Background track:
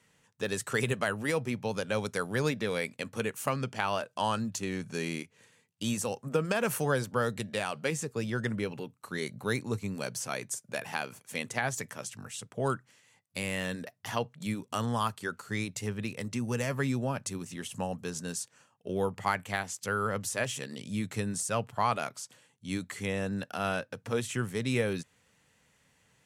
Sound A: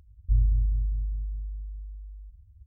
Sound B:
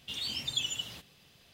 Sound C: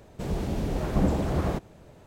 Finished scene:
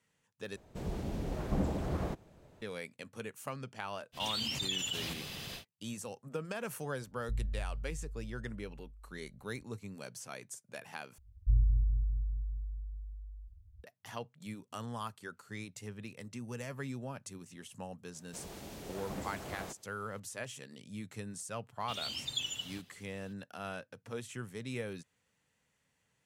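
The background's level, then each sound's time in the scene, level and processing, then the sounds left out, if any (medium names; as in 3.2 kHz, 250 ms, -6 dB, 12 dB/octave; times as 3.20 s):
background track -10.5 dB
0.56 s: replace with C -8.5 dB
4.12 s: add B -6 dB, fades 0.10 s + level flattener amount 70%
7.00 s: add A -13.5 dB
11.18 s: replace with A -4.5 dB
18.14 s: add C -12 dB + tilt EQ +3 dB/octave
21.80 s: add B -4 dB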